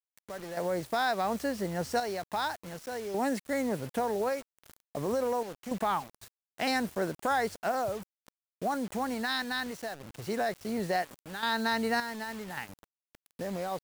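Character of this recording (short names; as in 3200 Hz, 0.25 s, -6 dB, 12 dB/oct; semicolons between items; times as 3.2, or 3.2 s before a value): random-step tremolo, depth 70%; a quantiser's noise floor 8-bit, dither none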